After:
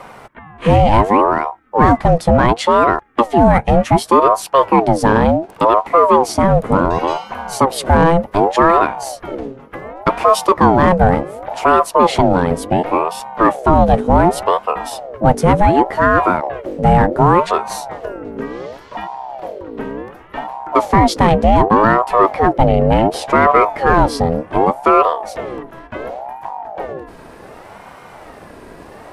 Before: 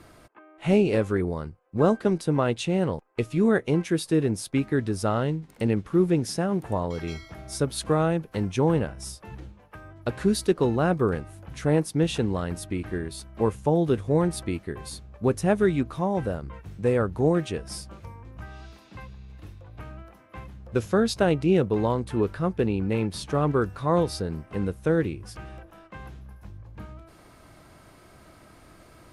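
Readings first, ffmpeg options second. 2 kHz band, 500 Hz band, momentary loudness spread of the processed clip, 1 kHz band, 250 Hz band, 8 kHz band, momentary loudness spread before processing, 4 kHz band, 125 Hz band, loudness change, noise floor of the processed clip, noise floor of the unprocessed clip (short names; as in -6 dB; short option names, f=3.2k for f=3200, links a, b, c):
+14.0 dB, +11.0 dB, 16 LU, +21.5 dB, +8.0 dB, +7.5 dB, 21 LU, +9.5 dB, +8.5 dB, +12.0 dB, -39 dBFS, -53 dBFS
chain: -filter_complex "[0:a]highshelf=f=2.3k:g=-8.5,aeval=exprs='0.376*(cos(1*acos(clip(val(0)/0.376,-1,1)))-cos(1*PI/2))+0.00422*(cos(3*acos(clip(val(0)/0.376,-1,1)))-cos(3*PI/2))':c=same,apsyclip=18dB,asplit=2[a][b];[b]asoftclip=type=hard:threshold=-9.5dB,volume=-8.5dB[c];[a][c]amix=inputs=2:normalize=0,aeval=exprs='val(0)*sin(2*PI*600*n/s+600*0.45/0.68*sin(2*PI*0.68*n/s))':c=same,volume=-2.5dB"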